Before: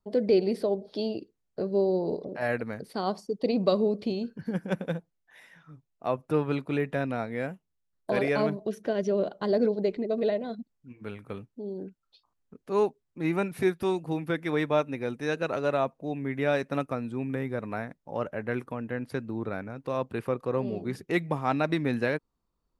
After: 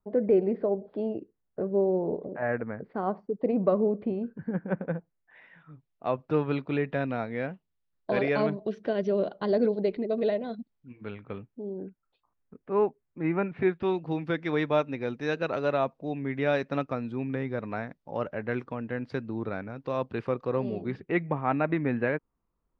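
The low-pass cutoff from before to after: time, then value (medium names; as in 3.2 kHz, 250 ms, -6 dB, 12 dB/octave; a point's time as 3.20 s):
low-pass 24 dB/octave
4.87 s 1.9 kHz
6.13 s 4.3 kHz
11.01 s 4.3 kHz
11.77 s 2.3 kHz
13.46 s 2.3 kHz
14.25 s 5.2 kHz
20.63 s 5.2 kHz
21.19 s 2.5 kHz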